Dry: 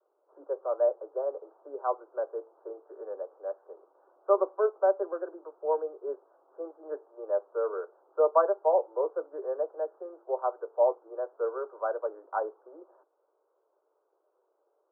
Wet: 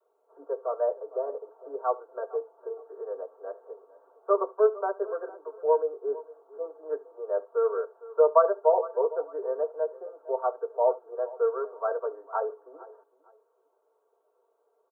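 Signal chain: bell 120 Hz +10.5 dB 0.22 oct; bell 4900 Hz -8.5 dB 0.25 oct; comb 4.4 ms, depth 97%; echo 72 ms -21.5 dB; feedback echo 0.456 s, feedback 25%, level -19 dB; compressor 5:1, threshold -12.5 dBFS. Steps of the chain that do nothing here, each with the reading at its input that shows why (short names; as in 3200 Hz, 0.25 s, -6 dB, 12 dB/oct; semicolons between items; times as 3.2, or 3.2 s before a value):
bell 120 Hz: input band starts at 290 Hz; bell 4900 Hz: input band ends at 1500 Hz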